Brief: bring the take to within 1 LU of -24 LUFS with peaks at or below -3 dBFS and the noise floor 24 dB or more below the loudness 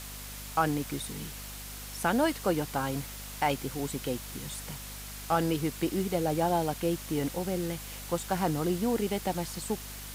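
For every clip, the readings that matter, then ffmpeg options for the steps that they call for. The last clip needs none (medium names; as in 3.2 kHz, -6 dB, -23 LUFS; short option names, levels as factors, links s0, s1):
hum 50 Hz; highest harmonic 250 Hz; hum level -43 dBFS; noise floor -42 dBFS; noise floor target -56 dBFS; loudness -31.5 LUFS; peak level -13.0 dBFS; loudness target -24.0 LUFS
-> -af "bandreject=f=50:t=h:w=6,bandreject=f=100:t=h:w=6,bandreject=f=150:t=h:w=6,bandreject=f=200:t=h:w=6,bandreject=f=250:t=h:w=6"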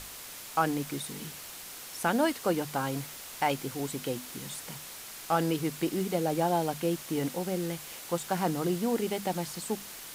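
hum not found; noise floor -44 dBFS; noise floor target -56 dBFS
-> -af "afftdn=nr=12:nf=-44"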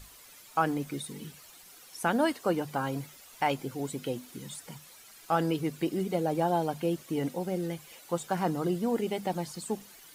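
noise floor -53 dBFS; noise floor target -56 dBFS
-> -af "afftdn=nr=6:nf=-53"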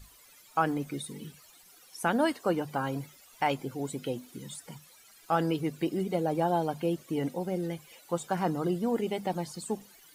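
noise floor -57 dBFS; loudness -31.5 LUFS; peak level -13.5 dBFS; loudness target -24.0 LUFS
-> -af "volume=2.37"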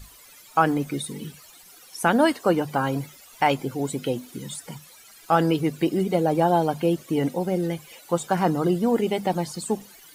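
loudness -24.0 LUFS; peak level -6.0 dBFS; noise floor -50 dBFS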